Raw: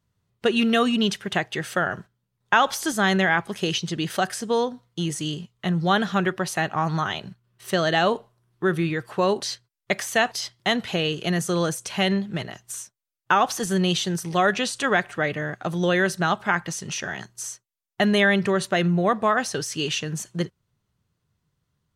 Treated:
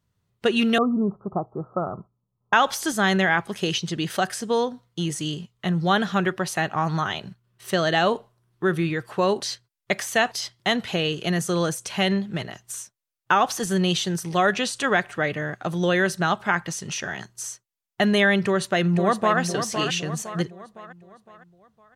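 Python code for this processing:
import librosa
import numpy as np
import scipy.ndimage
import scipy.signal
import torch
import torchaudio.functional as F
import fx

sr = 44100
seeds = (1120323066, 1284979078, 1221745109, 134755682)

y = fx.cheby1_lowpass(x, sr, hz=1300.0, order=8, at=(0.78, 2.53))
y = fx.echo_throw(y, sr, start_s=18.42, length_s=0.97, ms=510, feedback_pct=45, wet_db=-8.0)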